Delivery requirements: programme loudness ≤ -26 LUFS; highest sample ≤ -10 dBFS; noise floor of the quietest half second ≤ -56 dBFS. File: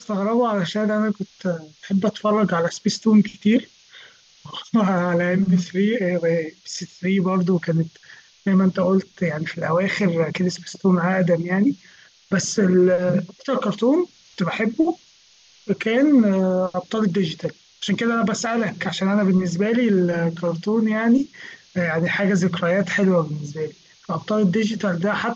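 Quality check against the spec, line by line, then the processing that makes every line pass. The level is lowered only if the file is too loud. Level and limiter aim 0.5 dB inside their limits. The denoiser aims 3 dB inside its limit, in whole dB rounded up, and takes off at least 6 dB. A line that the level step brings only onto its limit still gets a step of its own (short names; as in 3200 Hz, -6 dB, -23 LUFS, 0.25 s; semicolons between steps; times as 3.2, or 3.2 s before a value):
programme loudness -21.0 LUFS: fail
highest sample -6.5 dBFS: fail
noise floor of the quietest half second -54 dBFS: fail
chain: gain -5.5 dB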